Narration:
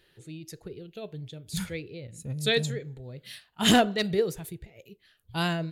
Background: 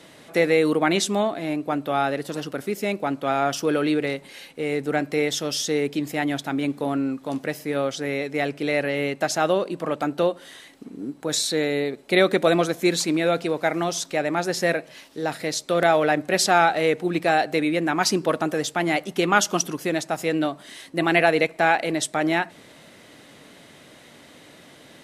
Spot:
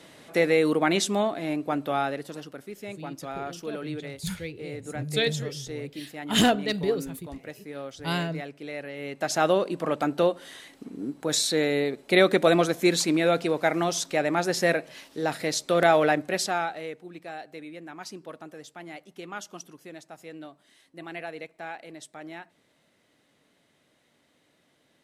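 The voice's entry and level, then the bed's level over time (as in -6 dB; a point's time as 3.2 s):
2.70 s, -0.5 dB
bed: 1.89 s -2.5 dB
2.68 s -13 dB
8.96 s -13 dB
9.38 s -1 dB
16.06 s -1 dB
17.07 s -19 dB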